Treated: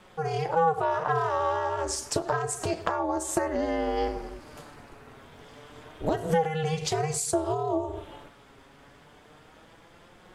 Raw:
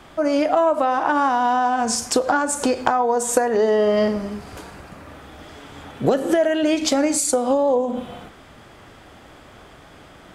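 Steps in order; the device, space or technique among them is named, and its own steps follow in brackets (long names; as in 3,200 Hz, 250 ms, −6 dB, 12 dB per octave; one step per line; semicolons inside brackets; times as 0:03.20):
alien voice (ring modulation 160 Hz; flanger 0.29 Hz, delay 5.4 ms, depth 2 ms, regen +46%)
level −1.5 dB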